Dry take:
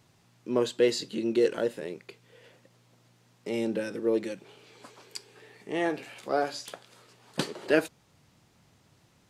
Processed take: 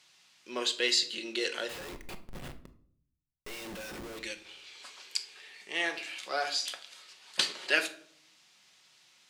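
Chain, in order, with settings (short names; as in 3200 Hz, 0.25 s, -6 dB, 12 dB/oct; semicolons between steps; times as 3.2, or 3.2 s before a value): band-pass 3100 Hz, Q 0.89; high shelf 3500 Hz +9 dB; 1.69–4.19 Schmitt trigger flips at -52.5 dBFS; shoebox room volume 830 m³, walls furnished, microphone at 1 m; gain +4 dB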